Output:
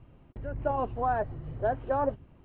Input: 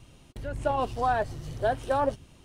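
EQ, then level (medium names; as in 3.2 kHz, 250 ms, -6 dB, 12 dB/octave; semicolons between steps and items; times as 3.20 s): Gaussian low-pass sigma 3.8 samples; distance through air 140 m; -1.0 dB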